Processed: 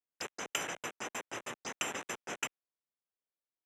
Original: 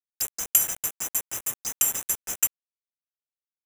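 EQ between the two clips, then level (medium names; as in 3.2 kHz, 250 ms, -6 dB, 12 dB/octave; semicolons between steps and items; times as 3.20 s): dynamic bell 2.4 kHz, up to +6 dB, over -42 dBFS, Q 0.77; band-pass 320–4800 Hz; tilt EQ -3.5 dB/octave; 0.0 dB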